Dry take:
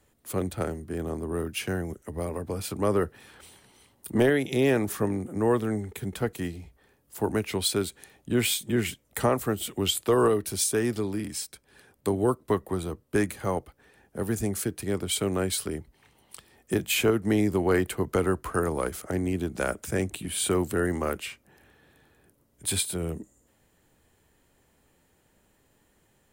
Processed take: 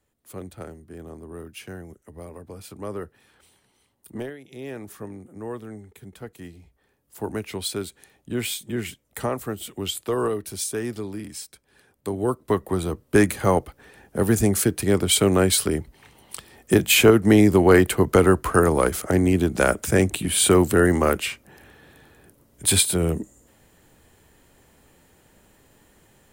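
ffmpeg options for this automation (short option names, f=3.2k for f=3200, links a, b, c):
-af "volume=20dB,afade=t=out:st=4.13:d=0.24:silence=0.281838,afade=t=in:st=4.37:d=0.53:silence=0.354813,afade=t=in:st=6.27:d=1.01:silence=0.421697,afade=t=in:st=12.08:d=1.27:silence=0.266073"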